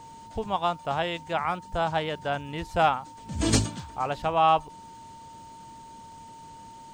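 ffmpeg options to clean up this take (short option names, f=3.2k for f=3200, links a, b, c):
-af "bandreject=f=910:w=30"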